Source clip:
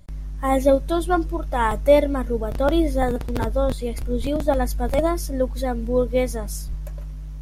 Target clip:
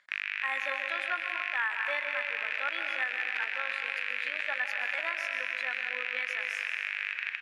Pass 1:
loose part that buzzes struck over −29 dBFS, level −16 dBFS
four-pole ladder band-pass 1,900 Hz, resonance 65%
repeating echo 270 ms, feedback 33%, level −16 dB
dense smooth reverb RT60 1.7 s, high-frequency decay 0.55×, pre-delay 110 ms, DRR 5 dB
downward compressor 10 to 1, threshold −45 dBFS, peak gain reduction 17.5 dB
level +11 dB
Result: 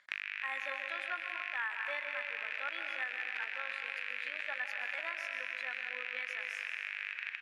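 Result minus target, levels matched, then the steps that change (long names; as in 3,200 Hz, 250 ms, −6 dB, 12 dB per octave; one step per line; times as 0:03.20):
downward compressor: peak gain reduction +6.5 dB
change: downward compressor 10 to 1, threshold −38 dBFS, peak gain reduction 11 dB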